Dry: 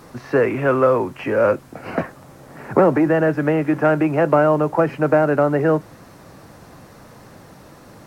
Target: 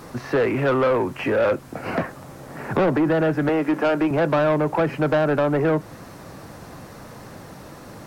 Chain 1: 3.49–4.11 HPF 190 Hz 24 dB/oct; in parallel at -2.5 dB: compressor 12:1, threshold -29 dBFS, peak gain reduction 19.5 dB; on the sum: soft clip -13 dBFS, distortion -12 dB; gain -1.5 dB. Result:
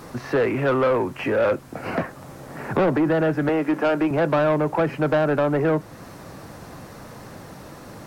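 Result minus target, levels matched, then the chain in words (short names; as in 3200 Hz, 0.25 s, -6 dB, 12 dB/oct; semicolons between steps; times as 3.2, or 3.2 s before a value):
compressor: peak gain reduction +6.5 dB
3.49–4.11 HPF 190 Hz 24 dB/oct; in parallel at -2.5 dB: compressor 12:1, threshold -22 dBFS, peak gain reduction 13 dB; on the sum: soft clip -13 dBFS, distortion -12 dB; gain -1.5 dB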